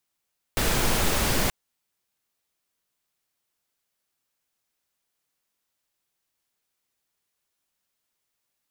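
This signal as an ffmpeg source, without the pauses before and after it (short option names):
-f lavfi -i "anoisesrc=c=pink:a=0.363:d=0.93:r=44100:seed=1"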